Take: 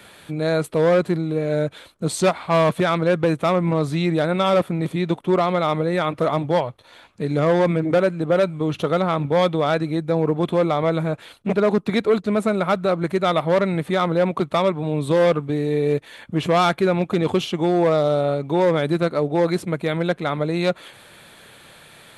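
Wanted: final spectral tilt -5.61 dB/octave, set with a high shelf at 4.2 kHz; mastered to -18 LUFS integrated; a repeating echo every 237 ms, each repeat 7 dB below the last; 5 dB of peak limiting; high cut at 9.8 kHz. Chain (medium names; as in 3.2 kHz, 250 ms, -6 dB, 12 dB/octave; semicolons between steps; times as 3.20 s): low-pass 9.8 kHz; treble shelf 4.2 kHz +4.5 dB; peak limiter -12 dBFS; feedback delay 237 ms, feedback 45%, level -7 dB; trim +3.5 dB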